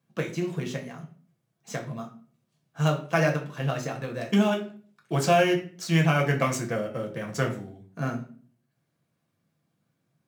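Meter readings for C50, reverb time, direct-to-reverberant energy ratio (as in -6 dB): 10.5 dB, 0.45 s, 1.0 dB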